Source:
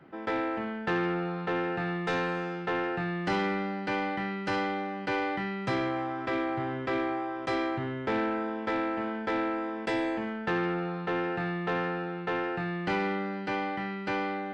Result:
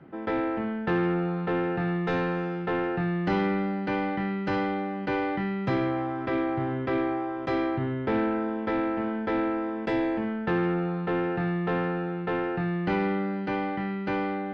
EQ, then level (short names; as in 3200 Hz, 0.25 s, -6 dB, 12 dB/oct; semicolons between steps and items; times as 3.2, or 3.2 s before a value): air absorption 130 m; low shelf 410 Hz +7.5 dB; notches 60/120 Hz; 0.0 dB